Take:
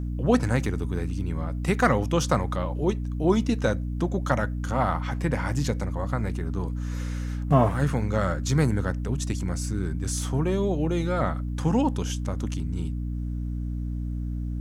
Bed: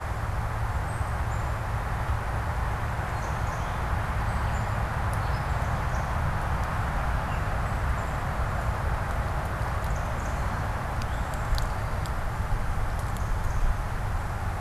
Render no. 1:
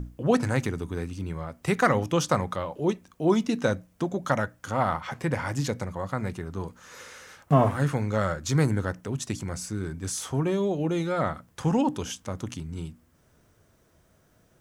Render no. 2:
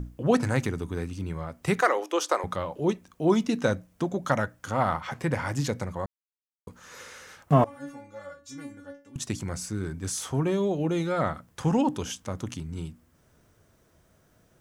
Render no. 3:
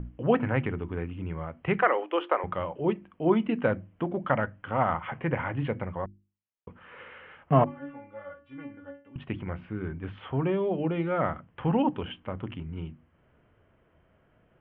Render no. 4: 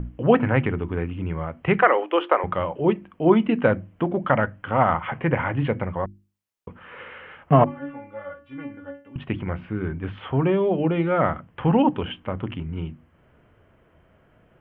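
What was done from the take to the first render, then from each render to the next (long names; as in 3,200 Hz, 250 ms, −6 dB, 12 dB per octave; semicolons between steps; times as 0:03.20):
mains-hum notches 60/120/180/240/300 Hz
0:01.81–0:02.44: elliptic high-pass filter 340 Hz, stop band 80 dB; 0:06.06–0:06.67: silence; 0:07.64–0:09.16: stiff-string resonator 280 Hz, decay 0.33 s, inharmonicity 0.002
Chebyshev low-pass filter 3,100 Hz, order 6; mains-hum notches 50/100/150/200/250/300/350 Hz
level +6.5 dB; brickwall limiter −3 dBFS, peak gain reduction 3 dB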